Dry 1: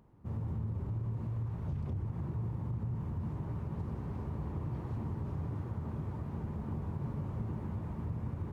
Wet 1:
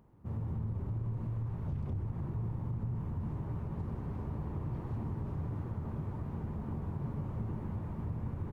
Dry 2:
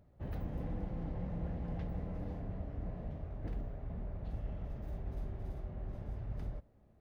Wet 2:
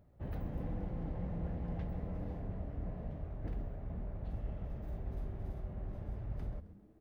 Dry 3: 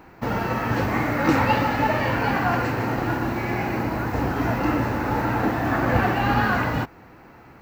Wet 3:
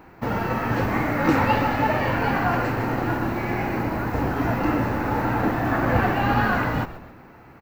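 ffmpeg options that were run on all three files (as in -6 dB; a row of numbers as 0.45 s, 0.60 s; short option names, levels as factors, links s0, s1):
-filter_complex "[0:a]equalizer=f=5700:t=o:w=1.8:g=-3.5,asplit=2[s0][s1];[s1]asplit=4[s2][s3][s4][s5];[s2]adelay=133,afreqshift=-120,volume=0.2[s6];[s3]adelay=266,afreqshift=-240,volume=0.0861[s7];[s4]adelay=399,afreqshift=-360,volume=0.0367[s8];[s5]adelay=532,afreqshift=-480,volume=0.0158[s9];[s6][s7][s8][s9]amix=inputs=4:normalize=0[s10];[s0][s10]amix=inputs=2:normalize=0"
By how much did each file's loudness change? 0.0 LU, 0.0 LU, 0.0 LU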